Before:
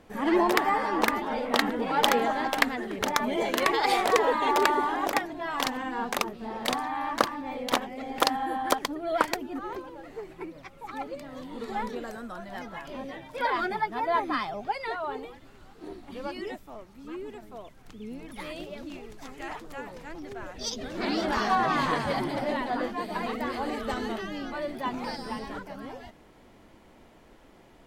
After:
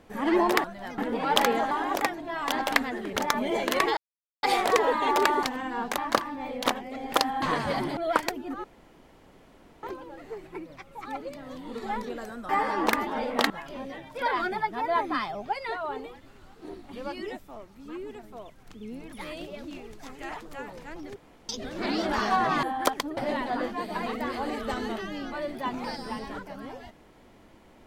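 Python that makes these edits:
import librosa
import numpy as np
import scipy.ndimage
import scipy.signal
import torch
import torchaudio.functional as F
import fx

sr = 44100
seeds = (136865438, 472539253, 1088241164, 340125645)

y = fx.edit(x, sr, fx.swap(start_s=0.64, length_s=1.01, other_s=12.35, other_length_s=0.34),
    fx.insert_silence(at_s=3.83, length_s=0.46),
    fx.move(start_s=4.83, length_s=0.81, to_s=2.38),
    fx.cut(start_s=6.19, length_s=0.85),
    fx.swap(start_s=8.48, length_s=0.54, other_s=21.82, other_length_s=0.55),
    fx.insert_room_tone(at_s=9.69, length_s=1.19),
    fx.room_tone_fill(start_s=20.35, length_s=0.33), tone=tone)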